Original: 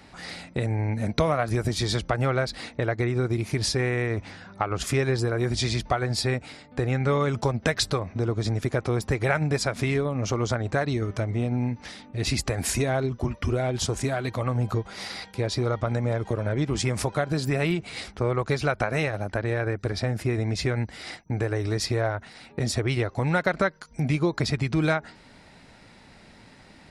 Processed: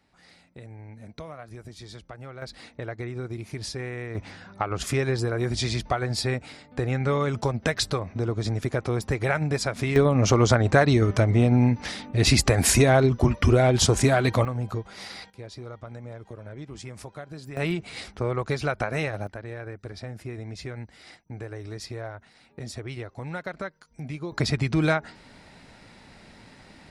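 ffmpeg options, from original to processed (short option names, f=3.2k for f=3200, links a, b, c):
-af "asetnsamples=n=441:p=0,asendcmd='2.42 volume volume -8.5dB;4.15 volume volume -1dB;9.96 volume volume 7dB;14.45 volume volume -4dB;15.3 volume volume -14dB;17.57 volume volume -2dB;19.27 volume volume -10.5dB;24.32 volume volume 1dB',volume=-17dB"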